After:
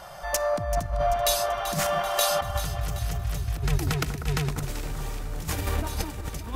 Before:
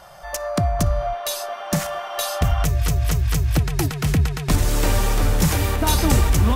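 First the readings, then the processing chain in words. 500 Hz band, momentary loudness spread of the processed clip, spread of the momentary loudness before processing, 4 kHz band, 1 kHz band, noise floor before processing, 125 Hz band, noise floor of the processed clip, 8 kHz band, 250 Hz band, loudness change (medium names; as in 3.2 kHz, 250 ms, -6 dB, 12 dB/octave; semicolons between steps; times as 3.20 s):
-1.5 dB, 10 LU, 8 LU, -3.5 dB, -2.5 dB, -33 dBFS, -10.0 dB, -37 dBFS, -4.5 dB, -11.5 dB, -6.5 dB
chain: compressor with a negative ratio -23 dBFS, ratio -0.5; echo whose repeats swap between lows and highs 193 ms, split 1.6 kHz, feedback 72%, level -8.5 dB; trim -3.5 dB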